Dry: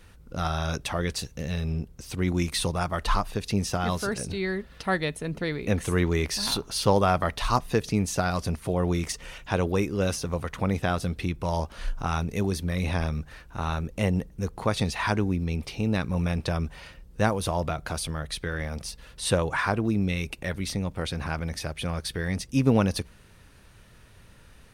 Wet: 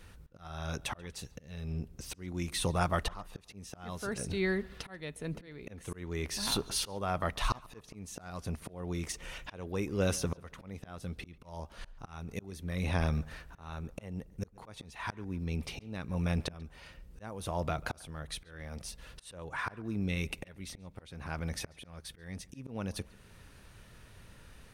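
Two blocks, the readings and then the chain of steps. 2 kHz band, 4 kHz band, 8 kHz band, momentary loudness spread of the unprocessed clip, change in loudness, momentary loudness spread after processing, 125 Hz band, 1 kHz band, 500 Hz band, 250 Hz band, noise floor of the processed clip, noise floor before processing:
−9.0 dB, −7.5 dB, −6.5 dB, 8 LU, −9.5 dB, 17 LU, −10.0 dB, −10.5 dB, −11.0 dB, −11.0 dB, −58 dBFS, −52 dBFS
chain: dynamic equaliser 4,700 Hz, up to −5 dB, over −49 dBFS, Q 4.2
volume swells 699 ms
on a send: tape delay 139 ms, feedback 41%, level −21 dB, low-pass 2,700 Hz
on the sum: level −1.5 dB

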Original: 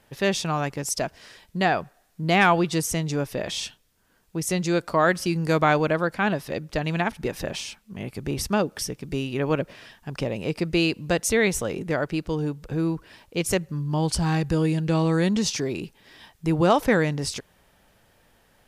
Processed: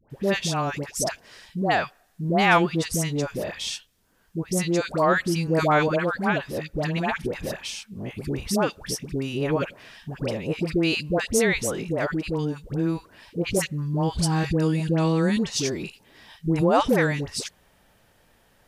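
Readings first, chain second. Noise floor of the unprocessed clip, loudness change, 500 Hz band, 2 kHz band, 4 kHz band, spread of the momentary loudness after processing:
−63 dBFS, 0.0 dB, 0.0 dB, 0.0 dB, 0.0 dB, 13 LU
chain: all-pass dispersion highs, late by 103 ms, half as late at 940 Hz

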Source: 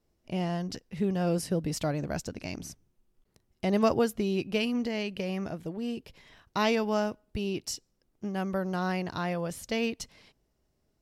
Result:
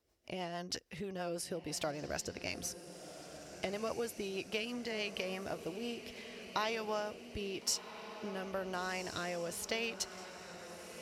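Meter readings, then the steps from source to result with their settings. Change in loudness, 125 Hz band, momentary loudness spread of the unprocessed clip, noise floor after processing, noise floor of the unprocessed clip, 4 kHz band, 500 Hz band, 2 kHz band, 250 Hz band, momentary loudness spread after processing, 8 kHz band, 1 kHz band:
−8.5 dB, −15.0 dB, 12 LU, −53 dBFS, −75 dBFS, −2.0 dB, −8.5 dB, −4.0 dB, −14.0 dB, 12 LU, +0.5 dB, −7.0 dB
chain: rotating-speaker cabinet horn 6.3 Hz, later 1 Hz, at 0:05.52
downward compressor, threshold −34 dBFS, peak gain reduction 12 dB
high-pass filter 71 Hz
parametric band 170 Hz −14 dB 2 octaves
on a send: feedback delay with all-pass diffusion 1,438 ms, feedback 58%, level −11 dB
on the sum: level +5 dB

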